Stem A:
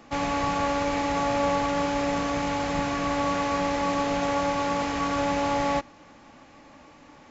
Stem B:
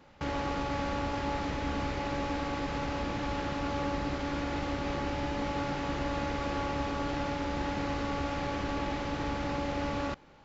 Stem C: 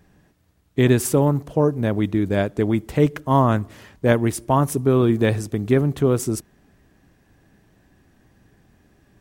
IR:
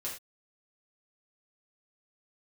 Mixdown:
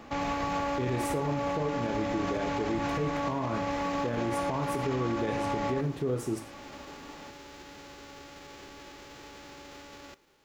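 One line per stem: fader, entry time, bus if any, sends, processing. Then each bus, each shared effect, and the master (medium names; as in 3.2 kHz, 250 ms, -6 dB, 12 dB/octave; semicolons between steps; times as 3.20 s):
+2.5 dB, 0.00 s, no bus, no send, peak limiter -25 dBFS, peak gain reduction 11 dB
-9.5 dB, 0.00 s, bus A, send -18 dB, formants flattened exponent 0.3; peak limiter -29.5 dBFS, peak gain reduction 10.5 dB
-9.5 dB, 0.00 s, bus A, send -4.5 dB, high-pass 60 Hz
bus A: 0.0 dB, peaking EQ 390 Hz +11.5 dB 0.4 oct; compression 1.5:1, threshold -41 dBFS, peak gain reduction 10 dB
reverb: on, pre-delay 3 ms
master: treble shelf 5.8 kHz -7.5 dB; peak limiter -21.5 dBFS, peak gain reduction 10.5 dB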